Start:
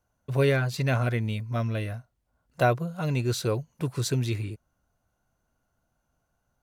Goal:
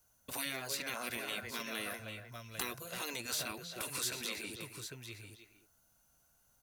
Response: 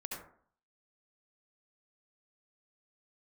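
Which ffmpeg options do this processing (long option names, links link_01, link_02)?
-filter_complex "[0:a]asplit=2[link_01][link_02];[link_02]adelay=310,highpass=300,lowpass=3400,asoftclip=type=hard:threshold=-19dB,volume=-13dB[link_03];[link_01][link_03]amix=inputs=2:normalize=0,acrossover=split=460|1100|2700[link_04][link_05][link_06][link_07];[link_04]acompressor=threshold=-38dB:ratio=4[link_08];[link_05]acompressor=threshold=-41dB:ratio=4[link_09];[link_06]acompressor=threshold=-41dB:ratio=4[link_10];[link_07]acompressor=threshold=-51dB:ratio=4[link_11];[link_08][link_09][link_10][link_11]amix=inputs=4:normalize=0,crystalizer=i=6:c=0,asplit=2[link_12][link_13];[link_13]aecho=0:1:798:0.282[link_14];[link_12][link_14]amix=inputs=2:normalize=0,afftfilt=real='re*lt(hypot(re,im),0.0794)':imag='im*lt(hypot(re,im),0.0794)':win_size=1024:overlap=0.75,volume=-3.5dB"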